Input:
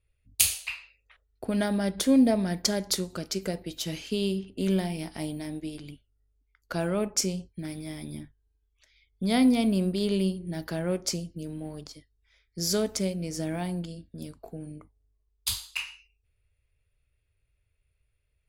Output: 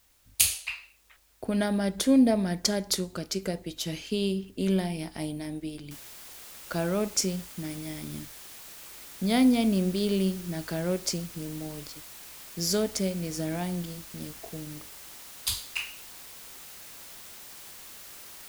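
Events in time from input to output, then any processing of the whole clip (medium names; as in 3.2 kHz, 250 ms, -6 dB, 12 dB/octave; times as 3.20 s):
5.91 s: noise floor step -65 dB -46 dB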